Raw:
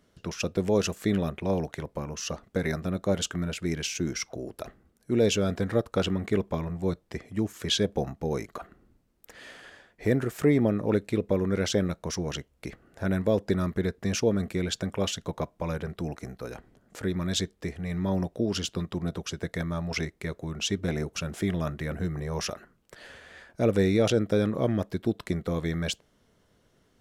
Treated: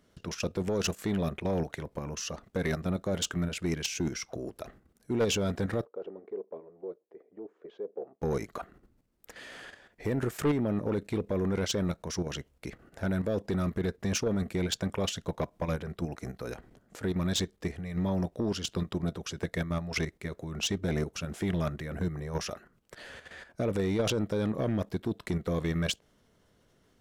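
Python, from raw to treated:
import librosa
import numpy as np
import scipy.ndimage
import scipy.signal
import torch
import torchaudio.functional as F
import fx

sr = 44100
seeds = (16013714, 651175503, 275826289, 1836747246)

y = fx.level_steps(x, sr, step_db=10)
y = 10.0 ** (-25.0 / 20.0) * np.tanh(y / 10.0 ** (-25.0 / 20.0))
y = fx.ladder_bandpass(y, sr, hz=480.0, resonance_pct=60, at=(5.85, 8.22))
y = F.gain(torch.from_numpy(y), 3.5).numpy()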